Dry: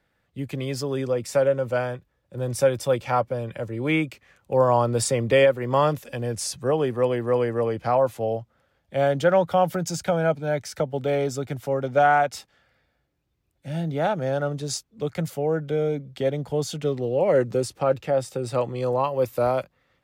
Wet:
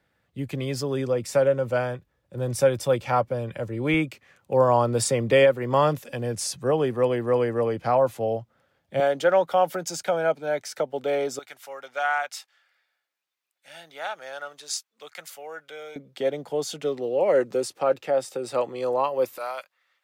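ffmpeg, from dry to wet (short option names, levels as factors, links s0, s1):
-af "asetnsamples=n=441:p=0,asendcmd='3.94 highpass f 100;9 highpass f 340;11.39 highpass f 1200;15.96 highpass f 310;19.38 highpass f 1200',highpass=47"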